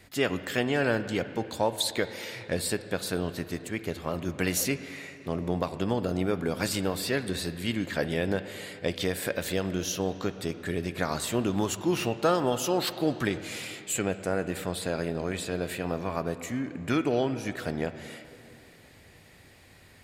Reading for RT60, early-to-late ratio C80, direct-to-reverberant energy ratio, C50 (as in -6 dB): 2.9 s, 12.5 dB, 11.0 dB, 12.0 dB